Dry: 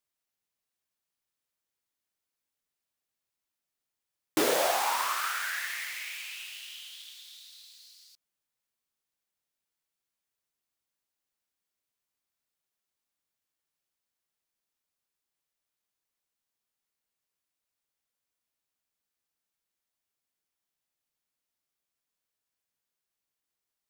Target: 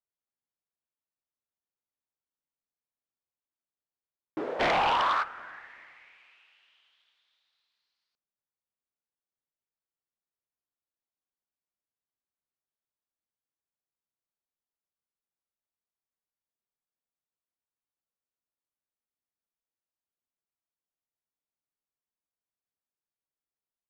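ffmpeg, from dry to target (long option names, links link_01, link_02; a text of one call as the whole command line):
ffmpeg -i in.wav -filter_complex "[0:a]lowpass=1300,asplit=3[link_01][link_02][link_03];[link_01]afade=type=out:start_time=4.59:duration=0.02[link_04];[link_02]aeval=exprs='0.178*sin(PI/2*5.01*val(0)/0.178)':channel_layout=same,afade=type=in:start_time=4.59:duration=0.02,afade=type=out:start_time=5.22:duration=0.02[link_05];[link_03]afade=type=in:start_time=5.22:duration=0.02[link_06];[link_04][link_05][link_06]amix=inputs=3:normalize=0,asplit=2[link_07][link_08];[link_08]adelay=384,lowpass=frequency=890:poles=1,volume=-21.5dB,asplit=2[link_09][link_10];[link_10]adelay=384,lowpass=frequency=890:poles=1,volume=0.35,asplit=2[link_11][link_12];[link_12]adelay=384,lowpass=frequency=890:poles=1,volume=0.35[link_13];[link_09][link_11][link_13]amix=inputs=3:normalize=0[link_14];[link_07][link_14]amix=inputs=2:normalize=0,volume=-6.5dB" out.wav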